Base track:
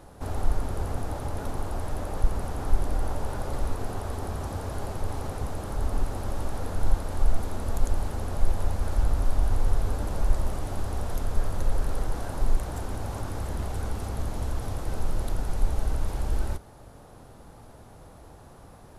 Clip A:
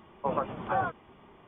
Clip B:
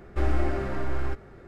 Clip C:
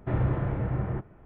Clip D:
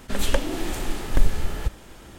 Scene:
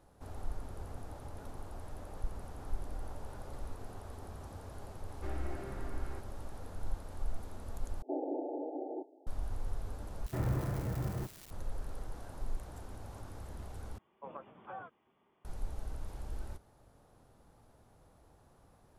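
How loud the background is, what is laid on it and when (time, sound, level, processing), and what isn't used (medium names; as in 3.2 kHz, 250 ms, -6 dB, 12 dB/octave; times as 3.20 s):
base track -14.5 dB
5.06 s: add B -14.5 dB
8.02 s: replace with C -1.5 dB + FFT band-pass 250–890 Hz
10.26 s: replace with C -7 dB + zero-crossing glitches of -29.5 dBFS
13.98 s: replace with A -17 dB + high-pass 170 Hz 6 dB/octave
not used: D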